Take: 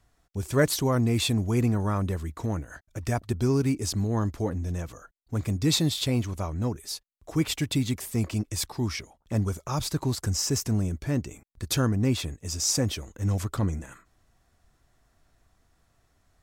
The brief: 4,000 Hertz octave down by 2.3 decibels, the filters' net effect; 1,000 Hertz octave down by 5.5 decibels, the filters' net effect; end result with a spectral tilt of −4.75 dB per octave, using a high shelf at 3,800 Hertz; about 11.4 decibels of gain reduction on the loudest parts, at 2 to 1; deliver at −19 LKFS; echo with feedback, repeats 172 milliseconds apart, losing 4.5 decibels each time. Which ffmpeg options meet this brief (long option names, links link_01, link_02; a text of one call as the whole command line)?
ffmpeg -i in.wav -af "equalizer=frequency=1000:width_type=o:gain=-7.5,highshelf=frequency=3800:gain=6,equalizer=frequency=4000:width_type=o:gain=-7,acompressor=threshold=-41dB:ratio=2,aecho=1:1:172|344|516|688|860|1032|1204|1376|1548:0.596|0.357|0.214|0.129|0.0772|0.0463|0.0278|0.0167|0.01,volume=17dB" out.wav